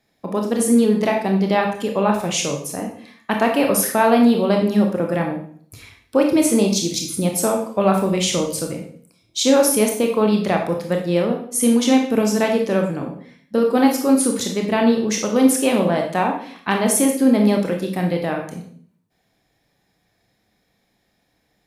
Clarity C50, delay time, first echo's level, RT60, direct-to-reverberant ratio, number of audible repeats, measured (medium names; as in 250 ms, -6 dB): 6.5 dB, no echo, no echo, 0.55 s, 2.0 dB, no echo